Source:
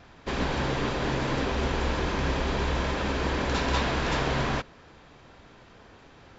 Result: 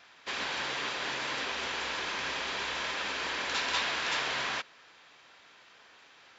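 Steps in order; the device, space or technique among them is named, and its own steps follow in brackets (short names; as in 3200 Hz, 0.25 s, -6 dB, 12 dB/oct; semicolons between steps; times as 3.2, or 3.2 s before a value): filter by subtraction (in parallel: LPF 2600 Hz 12 dB/oct + phase invert)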